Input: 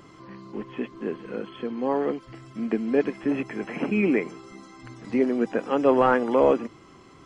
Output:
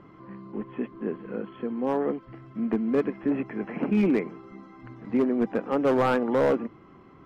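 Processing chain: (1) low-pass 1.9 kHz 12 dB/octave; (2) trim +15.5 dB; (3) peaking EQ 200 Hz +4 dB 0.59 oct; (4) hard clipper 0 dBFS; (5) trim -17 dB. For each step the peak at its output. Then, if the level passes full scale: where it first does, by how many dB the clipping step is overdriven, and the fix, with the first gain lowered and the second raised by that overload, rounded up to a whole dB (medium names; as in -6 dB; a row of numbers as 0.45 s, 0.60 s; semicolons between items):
-8.0 dBFS, +7.5 dBFS, +8.0 dBFS, 0.0 dBFS, -17.0 dBFS; step 2, 8.0 dB; step 2 +7.5 dB, step 5 -9 dB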